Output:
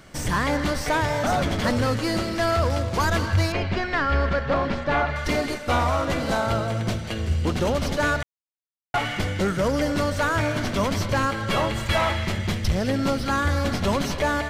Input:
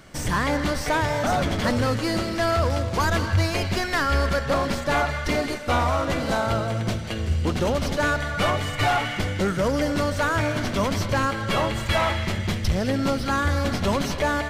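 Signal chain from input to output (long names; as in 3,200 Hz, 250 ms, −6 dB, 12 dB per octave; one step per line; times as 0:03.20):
0:03.52–0:05.16: low-pass filter 3,100 Hz 12 dB per octave
0:08.23–0:08.94: silence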